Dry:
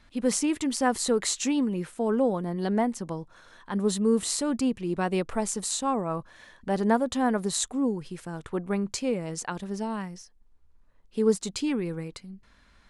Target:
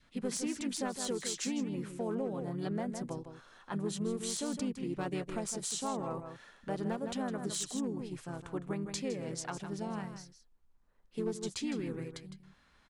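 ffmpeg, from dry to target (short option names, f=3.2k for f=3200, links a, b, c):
-filter_complex "[0:a]lowshelf=f=90:g=-7,aeval=exprs='clip(val(0),-1,0.1)':c=same,adynamicequalizer=threshold=0.00631:dfrequency=970:dqfactor=1.5:tfrequency=970:tqfactor=1.5:attack=5:release=100:ratio=0.375:range=2.5:mode=cutabove:tftype=bell,aecho=1:1:159:0.316,acompressor=threshold=-27dB:ratio=4,asplit=2[a][b];[b]asetrate=35002,aresample=44100,atempo=1.25992,volume=-5dB[c];[a][c]amix=inputs=2:normalize=0,volume=-6.5dB"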